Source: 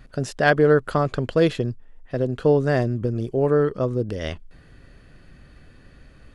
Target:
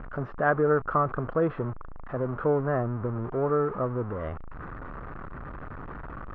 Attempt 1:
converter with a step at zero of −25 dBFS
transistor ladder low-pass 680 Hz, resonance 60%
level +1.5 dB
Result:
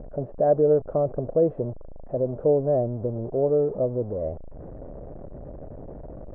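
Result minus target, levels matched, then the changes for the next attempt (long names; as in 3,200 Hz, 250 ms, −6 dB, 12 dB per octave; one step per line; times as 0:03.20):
1,000 Hz band −8.5 dB
change: transistor ladder low-pass 1,400 Hz, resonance 60%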